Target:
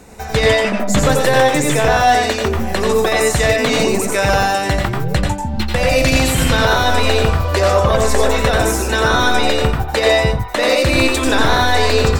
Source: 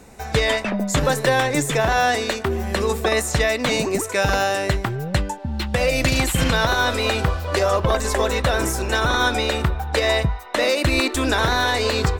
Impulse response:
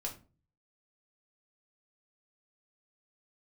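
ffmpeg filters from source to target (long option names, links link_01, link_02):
-filter_complex "[0:a]acontrast=69,asplit=2[link_01][link_02];[1:a]atrim=start_sample=2205,atrim=end_sample=3969,adelay=88[link_03];[link_02][link_03]afir=irnorm=-1:irlink=0,volume=-1.5dB[link_04];[link_01][link_04]amix=inputs=2:normalize=0,volume=-3dB"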